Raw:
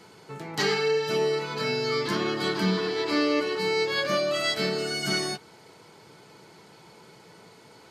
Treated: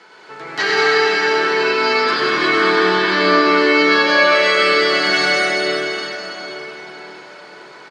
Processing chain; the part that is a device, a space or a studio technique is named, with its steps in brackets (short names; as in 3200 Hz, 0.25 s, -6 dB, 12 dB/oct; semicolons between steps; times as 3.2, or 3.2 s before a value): station announcement (BPF 320–4700 Hz; bell 1600 Hz +7.5 dB 0.56 oct; loudspeakers at several distances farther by 35 m -10 dB, 69 m -6 dB; reverb RT60 4.8 s, pre-delay 75 ms, DRR -4.5 dB); low shelf 480 Hz -5.5 dB; gain +6 dB